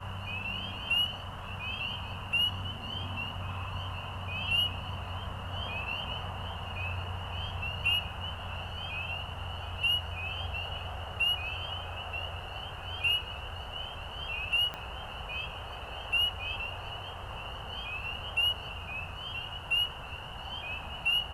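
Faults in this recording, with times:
0:14.74: click −23 dBFS

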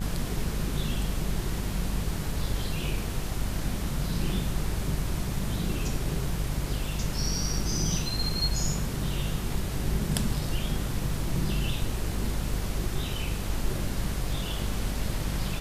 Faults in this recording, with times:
mains buzz 50 Hz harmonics 38 −33 dBFS

